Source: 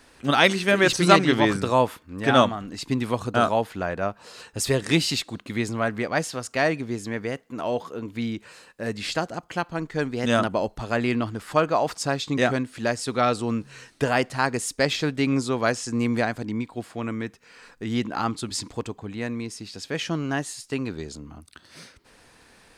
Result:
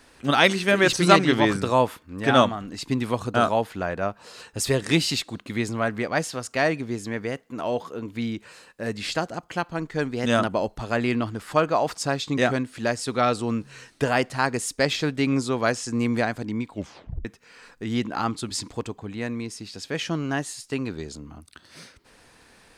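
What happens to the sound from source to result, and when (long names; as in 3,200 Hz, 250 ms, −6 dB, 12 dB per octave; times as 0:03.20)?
0:16.71: tape stop 0.54 s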